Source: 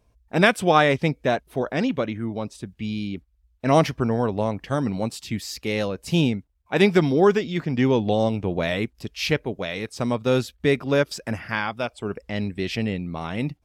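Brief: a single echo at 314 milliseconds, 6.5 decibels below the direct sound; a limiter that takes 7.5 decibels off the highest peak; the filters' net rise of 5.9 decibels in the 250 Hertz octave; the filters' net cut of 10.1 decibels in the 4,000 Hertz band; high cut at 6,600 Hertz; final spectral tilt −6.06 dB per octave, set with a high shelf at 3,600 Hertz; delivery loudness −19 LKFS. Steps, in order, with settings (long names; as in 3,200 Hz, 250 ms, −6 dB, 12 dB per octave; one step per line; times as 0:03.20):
low-pass filter 6,600 Hz
parametric band 250 Hz +7.5 dB
high-shelf EQ 3,600 Hz −7 dB
parametric band 4,000 Hz −8.5 dB
brickwall limiter −9.5 dBFS
single-tap delay 314 ms −6.5 dB
level +2.5 dB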